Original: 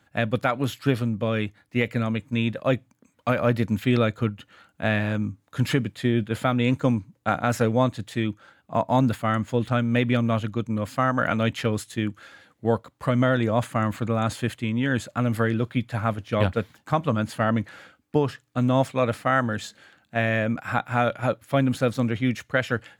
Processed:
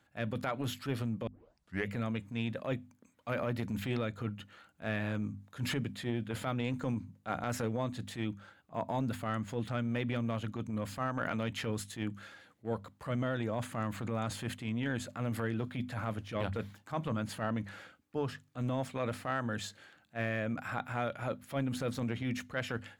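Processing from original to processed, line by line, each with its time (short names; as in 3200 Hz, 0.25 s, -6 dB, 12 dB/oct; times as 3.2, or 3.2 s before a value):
1.27 tape start 0.63 s
whole clip: notches 50/100/150/200/250 Hz; transient shaper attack -10 dB, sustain +2 dB; compressor, threshold -23 dBFS; gain -6.5 dB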